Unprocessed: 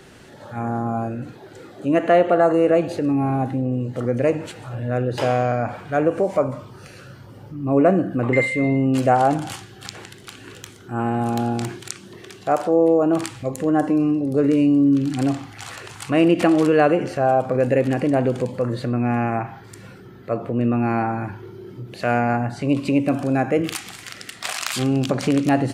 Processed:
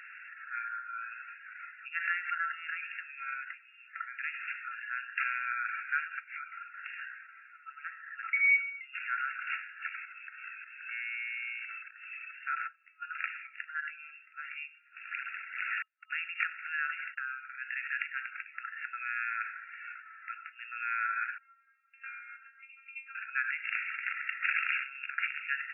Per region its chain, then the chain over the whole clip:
6.57–8.81 frequency shift +150 Hz + compressor 16:1, threshold -24 dBFS
9.95–12.35 HPF 510 Hz + compressor, threshold -42 dBFS + inverted band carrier 3000 Hz
15.82–17.77 HPF 120 Hz 24 dB/oct + gate -31 dBFS, range -48 dB + air absorption 260 m
21.38–23.15 air absorption 210 m + metallic resonator 220 Hz, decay 0.34 s, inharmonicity 0.002
whole clip: limiter -16 dBFS; FFT band-pass 1300–2800 Hz; gain +5.5 dB

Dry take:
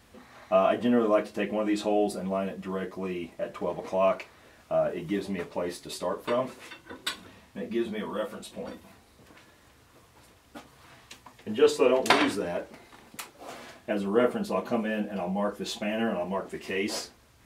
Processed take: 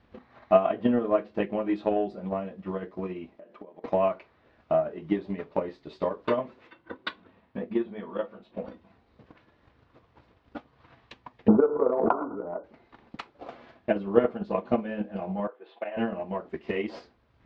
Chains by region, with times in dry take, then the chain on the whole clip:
3.36–3.84 resonant low shelf 160 Hz -13 dB, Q 1.5 + compressor 8:1, threshold -43 dBFS
6.67–8.63 LPF 2900 Hz 6 dB/oct + low shelf 100 Hz -9.5 dB
11.48–12.64 brick-wall FIR low-pass 1500 Hz + bell 87 Hz -13 dB 2.5 oct + backwards sustainer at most 22 dB/s
15.47–15.97 HPF 440 Hz 24 dB/oct + air absorption 400 m
whole clip: LPF 4500 Hz 24 dB/oct; high shelf 2300 Hz -10 dB; transient shaper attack +11 dB, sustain -3 dB; gain -3.5 dB

